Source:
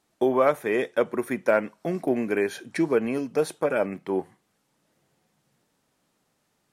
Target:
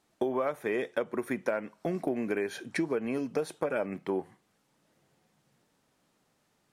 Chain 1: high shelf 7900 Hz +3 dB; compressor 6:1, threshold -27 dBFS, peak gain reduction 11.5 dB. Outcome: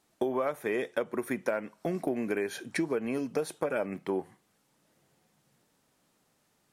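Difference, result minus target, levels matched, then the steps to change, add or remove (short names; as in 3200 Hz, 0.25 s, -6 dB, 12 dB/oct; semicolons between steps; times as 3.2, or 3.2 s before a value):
8000 Hz band +3.5 dB
change: high shelf 7900 Hz -4 dB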